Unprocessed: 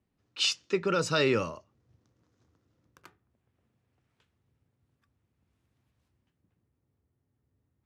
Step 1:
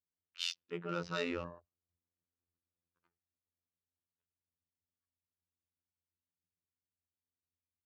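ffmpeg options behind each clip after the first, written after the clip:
ffmpeg -i in.wav -af "adynamicsmooth=sensitivity=5.5:basefreq=2900,afftfilt=real='hypot(re,im)*cos(PI*b)':imag='0':win_size=2048:overlap=0.75,afwtdn=0.00355,volume=-7dB" out.wav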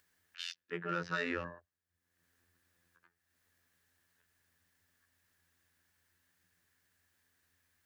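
ffmpeg -i in.wav -filter_complex "[0:a]equalizer=frequency=1700:width=3.4:gain=15,acrossover=split=230[link_01][link_02];[link_02]alimiter=limit=-23dB:level=0:latency=1:release=107[link_03];[link_01][link_03]amix=inputs=2:normalize=0,acompressor=mode=upward:threshold=-60dB:ratio=2.5" out.wav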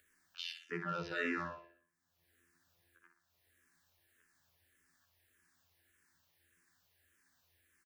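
ffmpeg -i in.wav -filter_complex "[0:a]alimiter=level_in=3dB:limit=-24dB:level=0:latency=1:release=26,volume=-3dB,aecho=1:1:61|122|183|244|305|366:0.422|0.207|0.101|0.0496|0.0243|0.0119,asplit=2[link_01][link_02];[link_02]afreqshift=-1.7[link_03];[link_01][link_03]amix=inputs=2:normalize=1,volume=3.5dB" out.wav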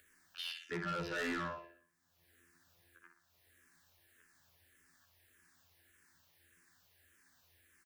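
ffmpeg -i in.wav -af "asoftclip=type=tanh:threshold=-39dB,volume=5dB" out.wav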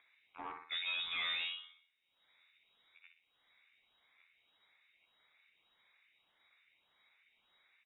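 ffmpeg -i in.wav -af "lowpass=frequency=3300:width_type=q:width=0.5098,lowpass=frequency=3300:width_type=q:width=0.6013,lowpass=frequency=3300:width_type=q:width=0.9,lowpass=frequency=3300:width_type=q:width=2.563,afreqshift=-3900" out.wav

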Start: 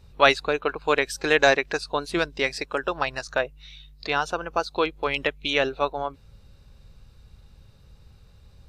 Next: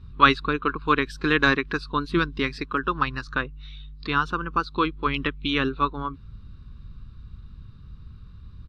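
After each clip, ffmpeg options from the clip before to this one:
ffmpeg -i in.wav -af "firequalizer=gain_entry='entry(270,0);entry(660,-28);entry(1100,-1);entry(2000,-12);entry(3600,-9);entry(6600,-24)':delay=0.05:min_phase=1,volume=8.5dB" out.wav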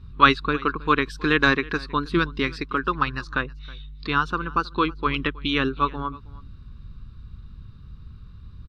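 ffmpeg -i in.wav -af "aecho=1:1:319:0.0794,volume=1dB" out.wav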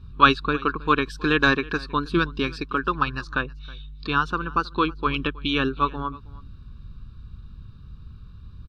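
ffmpeg -i in.wav -af "asuperstop=centerf=2000:order=8:qfactor=5.1" out.wav

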